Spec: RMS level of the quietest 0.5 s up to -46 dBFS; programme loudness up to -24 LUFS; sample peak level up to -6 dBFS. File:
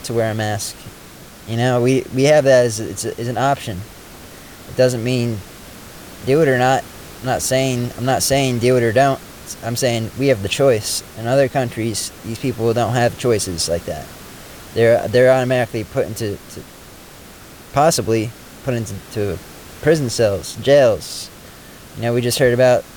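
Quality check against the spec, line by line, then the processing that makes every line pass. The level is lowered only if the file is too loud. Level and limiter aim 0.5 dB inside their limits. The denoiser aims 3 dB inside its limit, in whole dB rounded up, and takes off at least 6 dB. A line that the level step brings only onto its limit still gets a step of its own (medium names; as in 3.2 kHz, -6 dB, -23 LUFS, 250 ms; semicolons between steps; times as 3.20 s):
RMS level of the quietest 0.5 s -39 dBFS: fail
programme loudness -17.5 LUFS: fail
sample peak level -3.0 dBFS: fail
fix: noise reduction 6 dB, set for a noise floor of -39 dBFS; trim -7 dB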